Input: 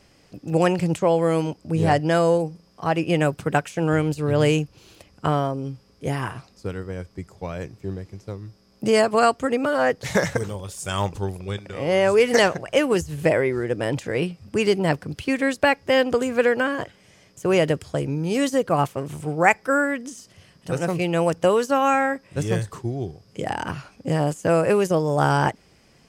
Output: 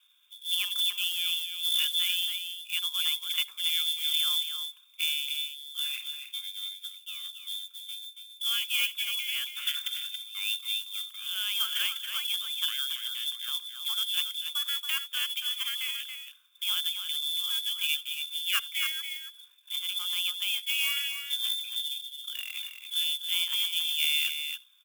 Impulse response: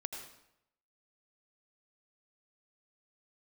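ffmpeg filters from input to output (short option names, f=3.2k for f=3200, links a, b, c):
-filter_complex "[0:a]bandreject=f=60:t=h:w=6,bandreject=f=120:t=h:w=6,bandreject=f=180:t=h:w=6,bandreject=f=240:t=h:w=6,bandreject=f=300:t=h:w=6,bandreject=f=360:t=h:w=6,bandreject=f=420:t=h:w=6,aecho=1:1:0.9:0.65,lowpass=f=3k:t=q:w=0.5098,lowpass=f=3k:t=q:w=0.6013,lowpass=f=3k:t=q:w=0.9,lowpass=f=3k:t=q:w=2.563,afreqshift=-3500,acrusher=bits=3:mode=log:mix=0:aa=0.000001,aderivative,aecho=1:1:292:0.422,asplit=2[a][b];[1:a]atrim=start_sample=2205,afade=t=out:st=0.14:d=0.01,atrim=end_sample=6615[c];[b][c]afir=irnorm=-1:irlink=0,volume=-13.5dB[d];[a][d]amix=inputs=2:normalize=0,asetrate=46305,aresample=44100,volume=-4.5dB"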